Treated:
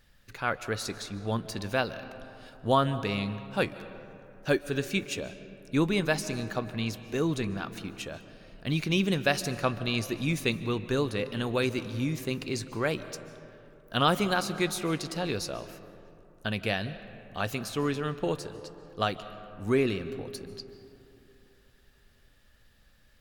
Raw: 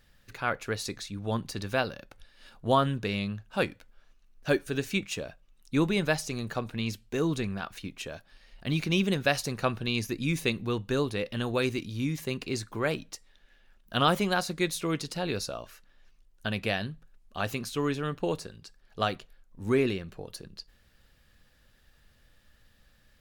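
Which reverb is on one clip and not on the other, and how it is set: algorithmic reverb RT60 3 s, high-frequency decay 0.4×, pre-delay 105 ms, DRR 13 dB

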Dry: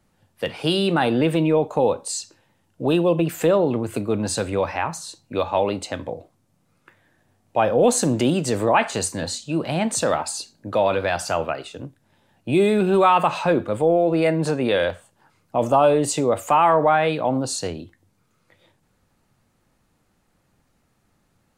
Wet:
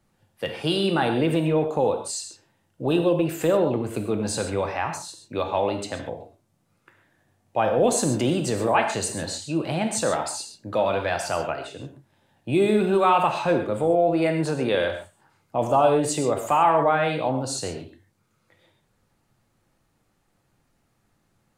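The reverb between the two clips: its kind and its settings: gated-style reverb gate 160 ms flat, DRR 5 dB; trim -3.5 dB

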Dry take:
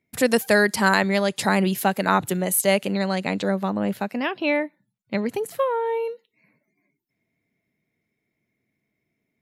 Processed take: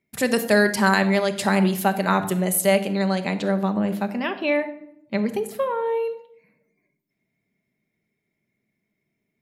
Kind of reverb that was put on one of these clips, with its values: simulated room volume 1900 m³, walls furnished, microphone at 1.2 m; trim -1.5 dB

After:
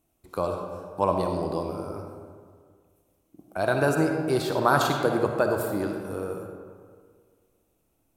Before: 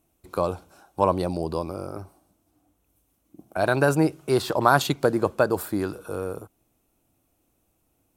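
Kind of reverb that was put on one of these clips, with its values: algorithmic reverb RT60 1.9 s, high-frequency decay 0.5×, pre-delay 20 ms, DRR 3 dB; trim -3.5 dB

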